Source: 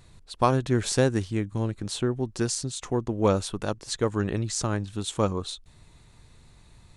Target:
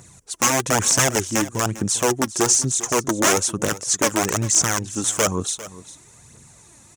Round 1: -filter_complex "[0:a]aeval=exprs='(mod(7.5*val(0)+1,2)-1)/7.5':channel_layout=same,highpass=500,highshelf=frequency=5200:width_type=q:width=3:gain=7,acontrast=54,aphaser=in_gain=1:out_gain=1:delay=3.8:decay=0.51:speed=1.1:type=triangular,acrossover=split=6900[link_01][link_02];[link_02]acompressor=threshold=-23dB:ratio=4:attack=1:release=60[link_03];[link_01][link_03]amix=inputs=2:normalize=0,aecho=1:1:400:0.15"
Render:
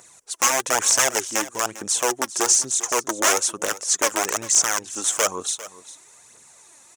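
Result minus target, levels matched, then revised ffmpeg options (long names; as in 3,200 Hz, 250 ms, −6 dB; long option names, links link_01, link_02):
125 Hz band −19.0 dB
-filter_complex "[0:a]aeval=exprs='(mod(7.5*val(0)+1,2)-1)/7.5':channel_layout=same,highpass=130,highshelf=frequency=5200:width_type=q:width=3:gain=7,acontrast=54,aphaser=in_gain=1:out_gain=1:delay=3.8:decay=0.51:speed=1.1:type=triangular,acrossover=split=6900[link_01][link_02];[link_02]acompressor=threshold=-23dB:ratio=4:attack=1:release=60[link_03];[link_01][link_03]amix=inputs=2:normalize=0,aecho=1:1:400:0.15"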